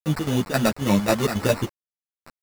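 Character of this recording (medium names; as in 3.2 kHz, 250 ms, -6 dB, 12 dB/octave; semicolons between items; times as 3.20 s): aliases and images of a low sample rate 3.2 kHz, jitter 0%; chopped level 3.7 Hz, depth 65%, duty 65%; a quantiser's noise floor 6-bit, dither none; a shimmering, thickened sound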